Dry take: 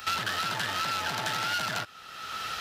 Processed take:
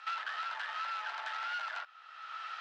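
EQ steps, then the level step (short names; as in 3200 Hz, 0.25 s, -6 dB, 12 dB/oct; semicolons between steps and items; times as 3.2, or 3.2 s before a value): Chebyshev high-pass 920 Hz, order 2; band-pass 1300 Hz, Q 0.67; air absorption 70 m; -5.5 dB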